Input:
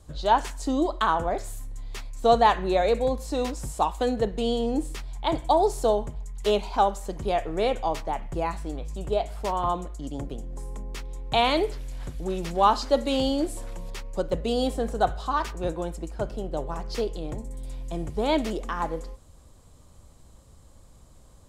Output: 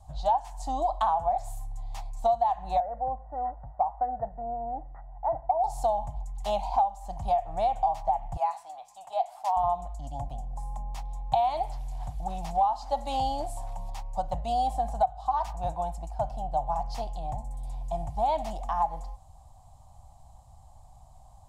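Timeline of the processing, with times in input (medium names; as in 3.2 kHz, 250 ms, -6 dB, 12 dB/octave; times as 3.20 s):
2.80–5.64 s: rippled Chebyshev low-pass 2 kHz, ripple 9 dB
8.37–9.57 s: high-pass 880 Hz
whole clip: FFT filter 120 Hz 0 dB, 290 Hz -16 dB, 430 Hz -28 dB, 750 Hz +15 dB, 1.4 kHz -12 dB, 6.3 kHz -6 dB; compression 8:1, threshold -22 dBFS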